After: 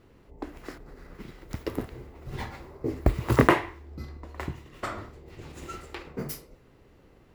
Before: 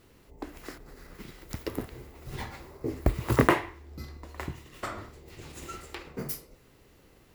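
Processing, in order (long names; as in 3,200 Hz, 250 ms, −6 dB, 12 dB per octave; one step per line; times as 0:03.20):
high-shelf EQ 7,900 Hz −6.5 dB
one half of a high-frequency compander decoder only
level +2.5 dB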